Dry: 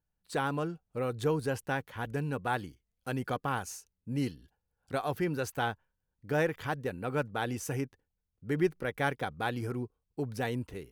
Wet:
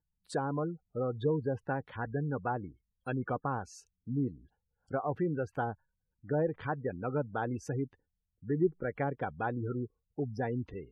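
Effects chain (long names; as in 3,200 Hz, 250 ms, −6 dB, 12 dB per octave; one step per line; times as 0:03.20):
gate on every frequency bin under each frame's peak −20 dB strong
treble cut that deepens with the level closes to 730 Hz, closed at −26.5 dBFS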